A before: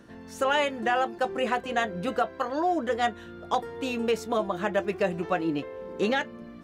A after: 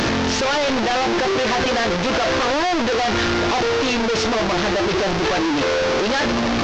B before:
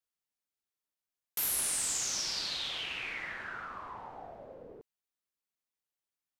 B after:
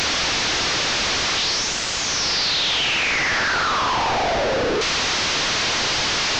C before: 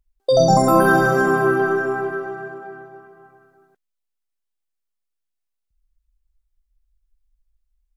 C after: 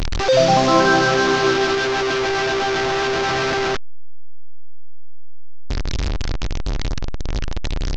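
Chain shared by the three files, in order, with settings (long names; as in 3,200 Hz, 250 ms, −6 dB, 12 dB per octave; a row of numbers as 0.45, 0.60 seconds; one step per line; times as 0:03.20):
linear delta modulator 32 kbit/s, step −13.5 dBFS
dynamic equaliser 180 Hz, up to −5 dB, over −38 dBFS, Q 2.7
loudness normalisation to −19 LKFS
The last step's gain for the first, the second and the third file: +1.0, −0.5, 0.0 decibels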